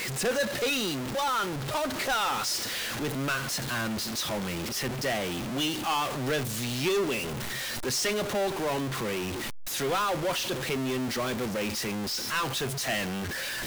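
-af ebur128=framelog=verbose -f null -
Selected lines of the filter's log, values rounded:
Integrated loudness:
  I:         -29.2 LUFS
  Threshold: -39.2 LUFS
Loudness range:
  LRA:         1.3 LU
  Threshold: -49.3 LUFS
  LRA low:   -29.8 LUFS
  LRA high:  -28.5 LUFS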